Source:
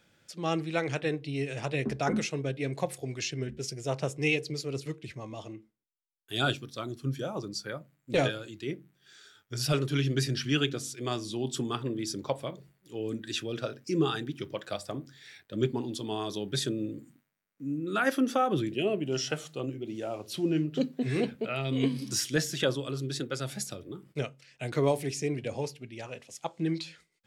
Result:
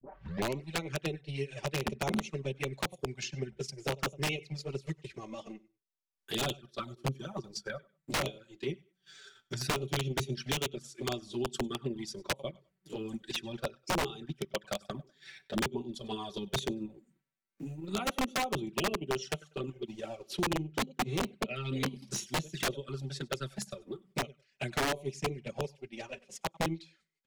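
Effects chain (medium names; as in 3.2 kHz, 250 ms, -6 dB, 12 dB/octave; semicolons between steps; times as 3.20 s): tape start-up on the opening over 0.65 s; transient shaper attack +8 dB, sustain -10 dB; comb 5.2 ms, depth 65%; on a send: feedback delay 97 ms, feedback 18%, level -23.5 dB; on the sum: touch-sensitive flanger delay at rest 8.7 ms, full sweep at -23 dBFS; integer overflow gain 17.5 dB; treble shelf 11 kHz -10 dB; three bands compressed up and down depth 40%; trim -5.5 dB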